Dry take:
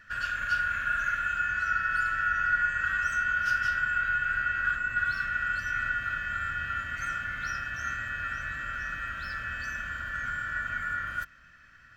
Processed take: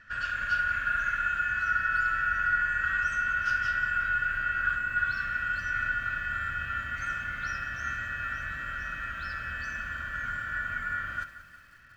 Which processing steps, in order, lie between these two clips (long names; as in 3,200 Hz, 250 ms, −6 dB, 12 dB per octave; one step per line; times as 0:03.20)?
high-frequency loss of the air 61 metres
flutter between parallel walls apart 11.4 metres, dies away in 0.29 s
feedback echo at a low word length 180 ms, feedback 55%, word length 9 bits, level −14 dB